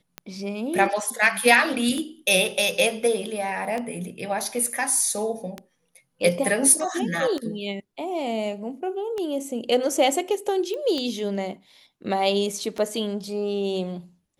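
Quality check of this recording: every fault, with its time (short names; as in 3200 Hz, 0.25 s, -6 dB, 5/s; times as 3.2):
tick 33 1/3 rpm -16 dBFS
10.74 pop -21 dBFS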